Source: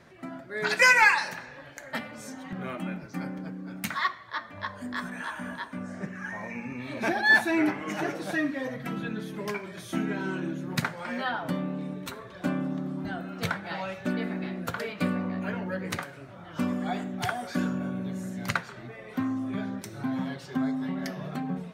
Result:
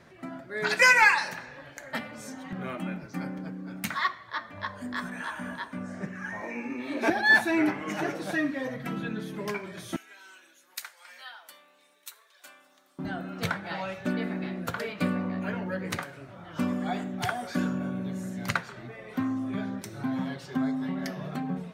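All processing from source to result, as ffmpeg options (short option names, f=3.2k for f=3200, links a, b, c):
-filter_complex "[0:a]asettb=1/sr,asplit=3[a][b][c];[a]atrim=end=6.404[d];[b]atrim=start=6.4:end=7.1,asetpts=PTS-STARTPTS,afade=t=in:d=0.004:c=qsin,afade=t=out:st=0.696:d=0.004:c=qsin,lowshelf=f=220:t=q:w=3:g=-10.5,asplit=2[e][f];[f]adelay=21,volume=-6dB[g];[e][g]amix=inputs=2:normalize=0,atrim=end_sample=30870[h];[c]atrim=start=7.096[i];[d][h]acrossfade=d=0.004:c1=hsin:c2=qsin[j];[j][i]acrossfade=d=0.004:c1=qsin:c2=hsin,asettb=1/sr,asplit=3[k][l][m];[k]atrim=end=9.964[n];[l]atrim=start=9.96:end=12.99,asetpts=PTS-STARTPTS,afade=t=in:d=0.004:c=qsin,afade=t=out:st=3.026:d=0.004:c=qsin,highpass=470,aderivative[o];[m]atrim=start=12.986[p];[n][o]acrossfade=d=0.004:c1=hsin:c2=qsin[q];[q][p]acrossfade=d=0.004:c1=qsin:c2=hsin"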